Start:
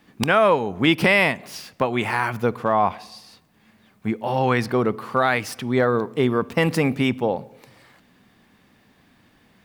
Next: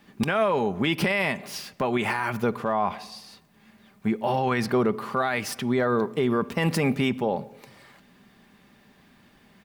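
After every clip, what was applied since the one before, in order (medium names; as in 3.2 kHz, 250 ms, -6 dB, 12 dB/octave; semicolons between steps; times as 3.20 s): comb 5 ms, depth 33%; peak limiter -14.5 dBFS, peak gain reduction 11 dB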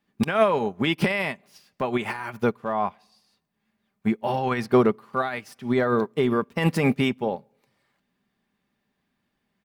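upward expansion 2.5:1, over -36 dBFS; trim +6 dB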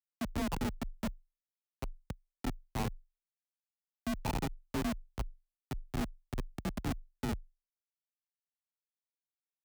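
two resonant band-passes 420 Hz, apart 2 oct; Schmitt trigger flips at -27.5 dBFS; frequency shift +22 Hz; trim +3 dB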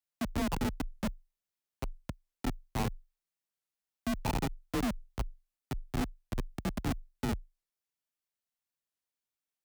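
warped record 45 rpm, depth 250 cents; trim +2.5 dB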